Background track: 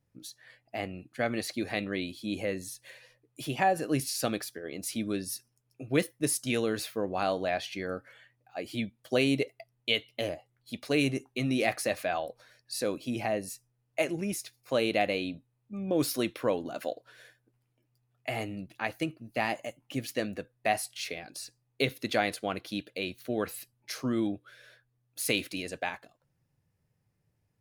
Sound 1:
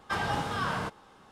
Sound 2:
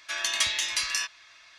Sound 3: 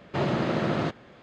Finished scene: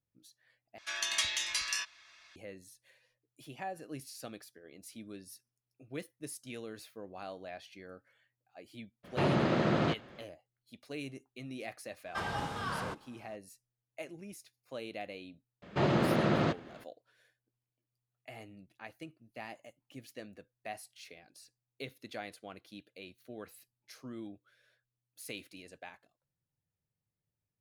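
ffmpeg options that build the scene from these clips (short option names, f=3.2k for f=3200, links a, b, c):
-filter_complex "[3:a]asplit=2[a][b];[0:a]volume=-15dB,asplit=2[c][d];[c]atrim=end=0.784[e];[2:a]atrim=end=1.58,asetpts=PTS-STARTPTS,volume=-6dB[f];[d]atrim=start=2.356[g];[a]atrim=end=1.22,asetpts=PTS-STARTPTS,volume=-2.5dB,afade=t=in:d=0.02,afade=t=out:st=1.2:d=0.02,adelay=9030[h];[1:a]atrim=end=1.31,asetpts=PTS-STARTPTS,volume=-6dB,afade=t=in:d=0.004:c=hsin,afade=t=out:st=1.306:d=0.004:c=hsin,adelay=12050[i];[b]atrim=end=1.22,asetpts=PTS-STARTPTS,volume=-2dB,afade=t=in:d=0.004:c=hsin,afade=t=out:st=1.216:d=0.004:c=hsin,adelay=15620[j];[e][f]acrossfade=d=0.004:c1=hsin:c2=hsin[k];[k][g]acrossfade=d=0.004:c1=hsin:c2=hsin[l];[l][h][i][j]amix=inputs=4:normalize=0"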